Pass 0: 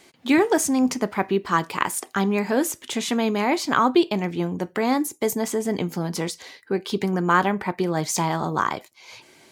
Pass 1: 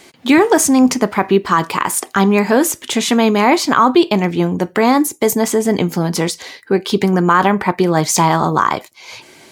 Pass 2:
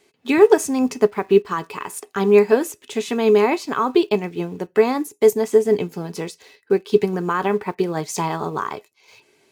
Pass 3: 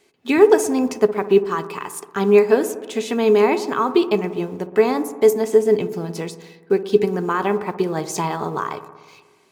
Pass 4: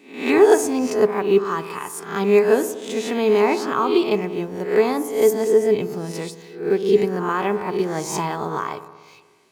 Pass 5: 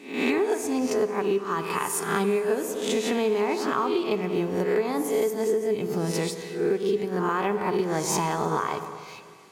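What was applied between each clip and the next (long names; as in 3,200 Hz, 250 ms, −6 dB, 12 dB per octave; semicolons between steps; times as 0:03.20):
dynamic equaliser 1,100 Hz, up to +4 dB, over −33 dBFS, Q 2.3; boost into a limiter +10.5 dB; level −1 dB
in parallel at −11 dB: bit reduction 5 bits; on the sum: hollow resonant body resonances 420/2,600 Hz, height 14 dB, ringing for 95 ms; expander for the loud parts 1.5 to 1, over −20 dBFS; level −7.5 dB
delay with a low-pass on its return 60 ms, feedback 74%, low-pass 1,200 Hz, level −12.5 dB
peak hold with a rise ahead of every peak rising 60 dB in 0.50 s; level −2.5 dB
downward compressor 12 to 1, threshold −26 dBFS, peak gain reduction 18.5 dB; four-comb reverb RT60 2.6 s, combs from 29 ms, DRR 13 dB; level +5 dB; MP3 80 kbit/s 44,100 Hz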